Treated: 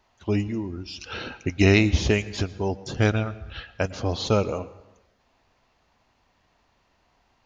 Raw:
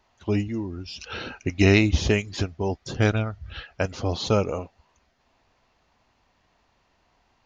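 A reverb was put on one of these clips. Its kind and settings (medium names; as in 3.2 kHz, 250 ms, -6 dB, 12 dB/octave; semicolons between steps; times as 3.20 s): plate-style reverb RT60 0.92 s, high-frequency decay 0.7×, pre-delay 95 ms, DRR 17 dB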